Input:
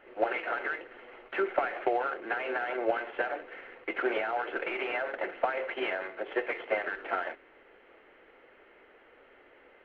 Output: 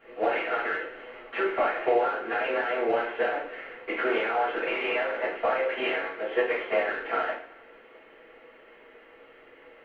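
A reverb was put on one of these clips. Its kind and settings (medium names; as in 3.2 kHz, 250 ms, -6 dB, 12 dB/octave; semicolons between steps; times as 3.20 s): two-slope reverb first 0.4 s, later 1.8 s, from -25 dB, DRR -10 dB; trim -5 dB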